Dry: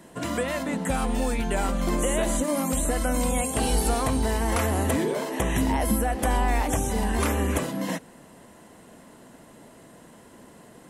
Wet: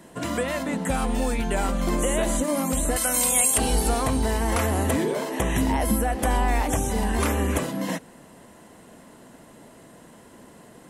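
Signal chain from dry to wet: 2.96–3.58 s: tilt EQ +3.5 dB/octave; trim +1 dB

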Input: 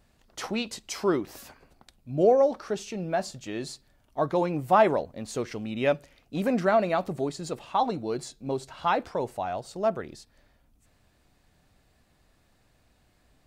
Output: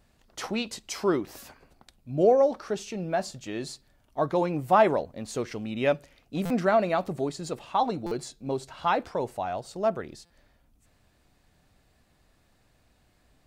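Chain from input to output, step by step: buffer glitch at 6.45/8.06/10.25 s, samples 256, times 8

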